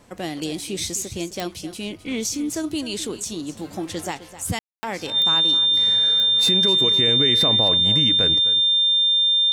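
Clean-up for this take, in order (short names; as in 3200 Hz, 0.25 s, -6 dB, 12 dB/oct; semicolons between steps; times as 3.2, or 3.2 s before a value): de-click; notch 3600 Hz, Q 30; room tone fill 4.59–4.83; inverse comb 0.259 s -14.5 dB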